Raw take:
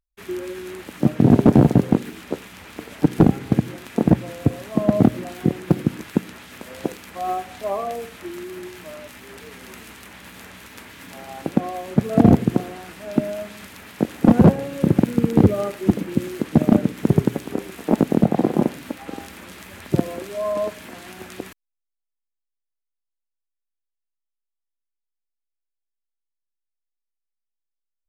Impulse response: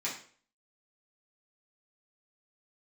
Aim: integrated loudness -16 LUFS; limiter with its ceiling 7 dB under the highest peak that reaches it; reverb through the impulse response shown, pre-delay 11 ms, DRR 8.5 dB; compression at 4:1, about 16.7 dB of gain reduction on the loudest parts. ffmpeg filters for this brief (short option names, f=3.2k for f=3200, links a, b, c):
-filter_complex "[0:a]acompressor=threshold=-30dB:ratio=4,alimiter=limit=-21.5dB:level=0:latency=1,asplit=2[a][b];[1:a]atrim=start_sample=2205,adelay=11[c];[b][c]afir=irnorm=-1:irlink=0,volume=-13dB[d];[a][d]amix=inputs=2:normalize=0,volume=19.5dB"